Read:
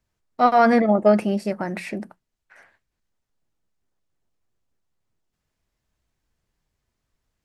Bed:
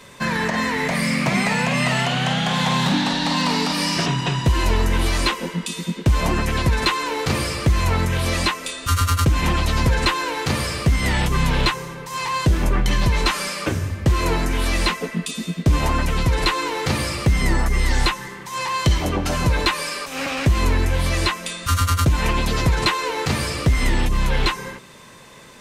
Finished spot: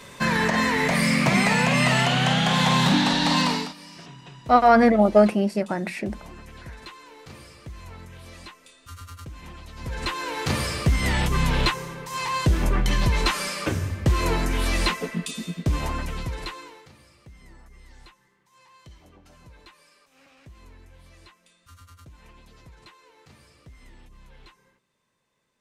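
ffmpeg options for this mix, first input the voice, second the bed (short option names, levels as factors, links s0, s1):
-filter_complex "[0:a]adelay=4100,volume=1.06[s0];[1:a]volume=9.44,afade=t=out:st=3.39:d=0.35:silence=0.0749894,afade=t=in:st=9.76:d=0.75:silence=0.105925,afade=t=out:st=15:d=1.9:silence=0.0398107[s1];[s0][s1]amix=inputs=2:normalize=0"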